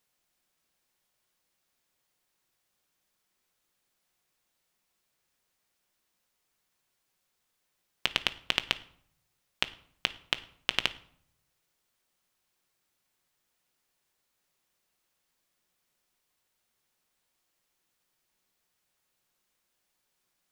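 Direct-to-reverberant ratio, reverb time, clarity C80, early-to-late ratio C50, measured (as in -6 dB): 10.5 dB, 0.65 s, 21.0 dB, 17.5 dB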